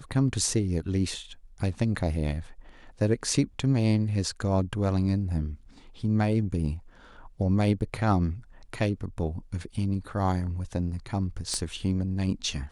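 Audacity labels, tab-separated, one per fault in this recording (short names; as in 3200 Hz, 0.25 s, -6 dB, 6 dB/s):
11.540000	11.540000	pop -19 dBFS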